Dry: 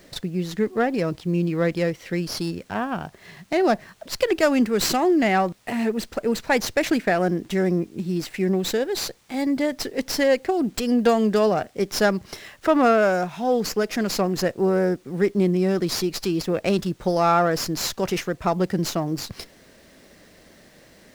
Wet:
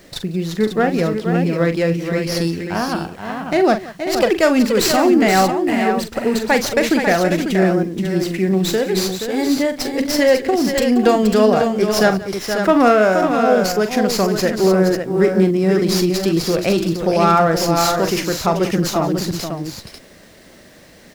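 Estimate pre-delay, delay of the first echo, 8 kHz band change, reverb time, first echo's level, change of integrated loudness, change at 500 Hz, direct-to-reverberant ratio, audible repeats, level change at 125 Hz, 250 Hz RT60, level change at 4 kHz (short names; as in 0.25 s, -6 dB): none, 42 ms, +6.0 dB, none, -9.5 dB, +6.0 dB, +6.5 dB, none, 4, +6.0 dB, none, +6.0 dB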